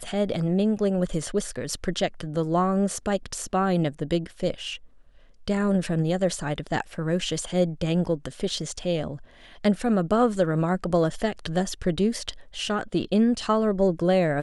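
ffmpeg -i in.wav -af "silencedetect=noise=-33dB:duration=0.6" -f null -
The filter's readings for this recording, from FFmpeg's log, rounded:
silence_start: 4.76
silence_end: 5.48 | silence_duration: 0.72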